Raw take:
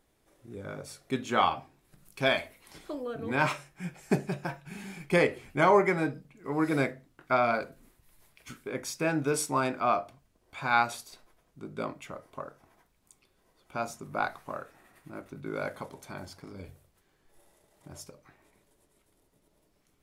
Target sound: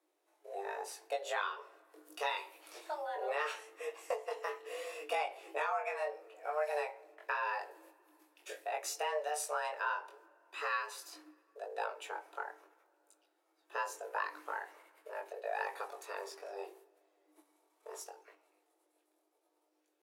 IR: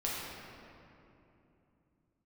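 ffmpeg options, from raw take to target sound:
-filter_complex "[0:a]agate=range=-9dB:threshold=-58dB:ratio=16:detection=peak,afreqshift=300,acompressor=threshold=-32dB:ratio=6,lowshelf=f=130:g=4.5,atempo=1,flanger=delay=19.5:depth=3.4:speed=0.76,asplit=2[a][b];[1:a]atrim=start_sample=2205[c];[b][c]afir=irnorm=-1:irlink=0,volume=-26.5dB[d];[a][d]amix=inputs=2:normalize=0,volume=1.5dB"

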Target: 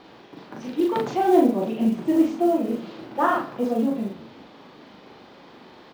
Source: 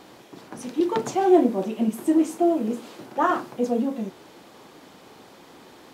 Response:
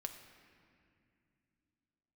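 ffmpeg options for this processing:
-filter_complex "[0:a]lowpass=f=4.7k:w=0.5412,lowpass=f=4.7k:w=1.3066,acrusher=bits=8:mode=log:mix=0:aa=0.000001,asplit=2[a][b];[b]adelay=40,volume=-2dB[c];[a][c]amix=inputs=2:normalize=0,asplit=4[d][e][f][g];[e]adelay=130,afreqshift=-46,volume=-20.5dB[h];[f]adelay=260,afreqshift=-92,volume=-29.4dB[i];[g]adelay=390,afreqshift=-138,volume=-38.2dB[j];[d][h][i][j]amix=inputs=4:normalize=0,asplit=2[k][l];[1:a]atrim=start_sample=2205[m];[l][m]afir=irnorm=-1:irlink=0,volume=-8.5dB[n];[k][n]amix=inputs=2:normalize=0,volume=-3dB"

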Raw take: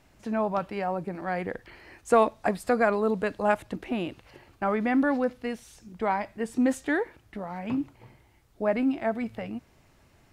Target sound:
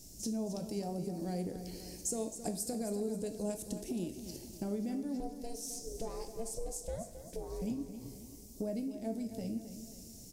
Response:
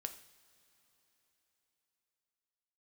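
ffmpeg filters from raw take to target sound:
-filter_complex "[0:a]firequalizer=gain_entry='entry(280,0);entry(1200,-28);entry(5500,14)':delay=0.05:min_phase=1,acompressor=threshold=-41dB:ratio=6,asettb=1/sr,asplit=3[a][b][c];[a]atrim=end=5.204[d];[b]atrim=start=5.2:end=7.62,asetpts=PTS-STARTPTS,afade=t=in:d=0.004:c=qsin,afade=t=out:st=2.416:d=0.004:c=qsin,aeval=exprs='val(0)*sin(2*PI*230*n/s)':c=same[e];[c]atrim=start=7.616[f];[d][e]acrossfade=d=0.004:c1=hsin:c2=qsin[g];[g][f]acrossfade=d=0.004:c1=qsin:c2=hsin,aecho=1:1:267|534|801|1068|1335:0.282|0.135|0.0649|0.0312|0.015[h];[1:a]atrim=start_sample=2205[i];[h][i]afir=irnorm=-1:irlink=0,volume=8dB"

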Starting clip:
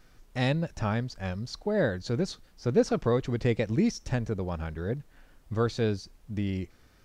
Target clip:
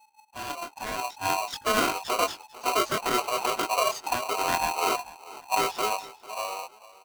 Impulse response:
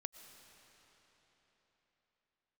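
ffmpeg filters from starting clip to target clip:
-filter_complex "[0:a]afftdn=nr=22:nf=-40,alimiter=limit=-22.5dB:level=0:latency=1:release=367,dynaudnorm=f=210:g=11:m=10dB,flanger=delay=19.5:depth=4:speed=0.53,asplit=4[a][b][c][d];[b]asetrate=22050,aresample=44100,atempo=2,volume=-13dB[e];[c]asetrate=37084,aresample=44100,atempo=1.18921,volume=-13dB[f];[d]asetrate=55563,aresample=44100,atempo=0.793701,volume=-15dB[g];[a][e][f][g]amix=inputs=4:normalize=0,asplit=2[h][i];[i]aecho=0:1:446|892|1338:0.112|0.0348|0.0108[j];[h][j]amix=inputs=2:normalize=0,aeval=exprs='val(0)*sgn(sin(2*PI*860*n/s))':c=same,volume=-1dB"

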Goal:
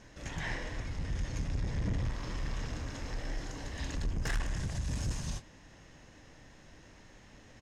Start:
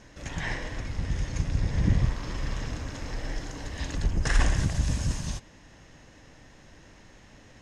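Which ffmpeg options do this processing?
-filter_complex "[0:a]asettb=1/sr,asplit=3[a][b][c];[a]atrim=end=4.374[d];[b]atrim=start=4.37:end=4.93,asetpts=PTS-STARTPTS,afade=t=in:d=0.004:c=qsin,afade=t=out:st=0.556:d=0.004:c=qsin,acompressor=threshold=-24dB:ratio=6[e];[c]atrim=start=4.926[f];[d][e]acrossfade=d=0.004:c1=hsin:c2=qsin[g];[g][f]acrossfade=d=0.004:c1=qsin:c2=hsin,asoftclip=type=tanh:threshold=-24.5dB,asplit=2[h][i];[i]adelay=26,volume=-12.5dB[j];[h][j]amix=inputs=2:normalize=0,volume=-3.5dB"

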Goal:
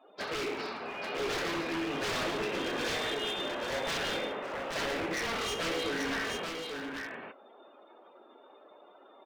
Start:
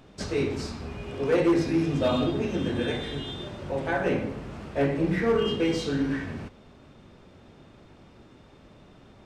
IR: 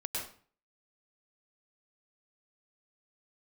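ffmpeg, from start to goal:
-filter_complex "[0:a]highpass=600,afftdn=nr=24:nf=-55,lowpass=f=3.5k:w=0.5412,lowpass=f=3.5k:w=1.3066,asplit=2[a][b];[b]acompressor=threshold=-38dB:ratio=6,volume=0.5dB[c];[a][c]amix=inputs=2:normalize=0,aeval=exprs='0.0335*(abs(mod(val(0)/0.0335+3,4)-2)-1)':c=same,aecho=1:1:67|165|554|834:0.266|0.133|0.112|0.631"

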